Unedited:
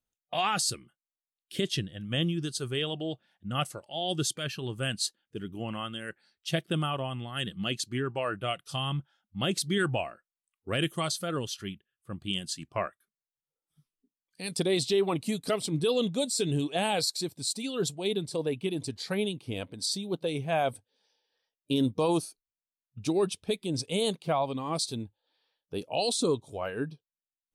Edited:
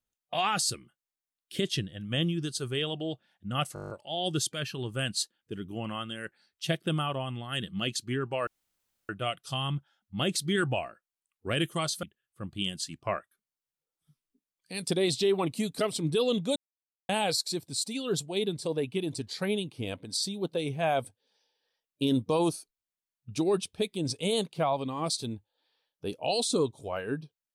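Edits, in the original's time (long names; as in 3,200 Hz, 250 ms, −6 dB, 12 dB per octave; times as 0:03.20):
0:03.74: stutter 0.02 s, 9 plays
0:08.31: splice in room tone 0.62 s
0:11.25–0:11.72: remove
0:16.25–0:16.78: silence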